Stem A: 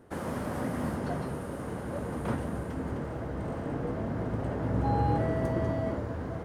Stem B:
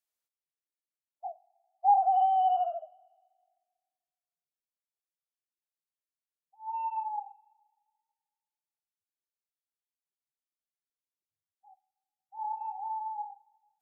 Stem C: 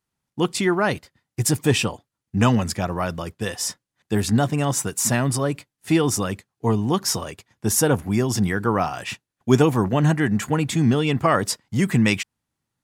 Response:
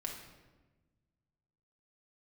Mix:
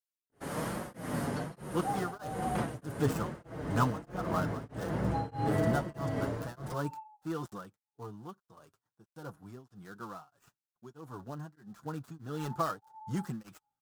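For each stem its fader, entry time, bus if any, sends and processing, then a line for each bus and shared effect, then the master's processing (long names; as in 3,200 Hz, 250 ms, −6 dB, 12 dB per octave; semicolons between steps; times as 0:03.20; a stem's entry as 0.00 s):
+1.0 dB, 0.30 s, send −11.5 dB, no processing
−10.0 dB, 0.00 s, no send, no processing
0:07.09 −8.5 dB → 0:07.83 −20.5 dB → 0:11.76 −20.5 dB → 0:12.10 −11.5 dB, 1.35 s, no send, gap after every zero crossing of 0.13 ms; high shelf with overshoot 1,700 Hz −7 dB, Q 3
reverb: on, RT60 1.2 s, pre-delay 5 ms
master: high-shelf EQ 2,200 Hz +8 dB; flanger 1.2 Hz, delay 5.3 ms, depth 2.1 ms, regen −20%; tremolo along a rectified sine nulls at 1.6 Hz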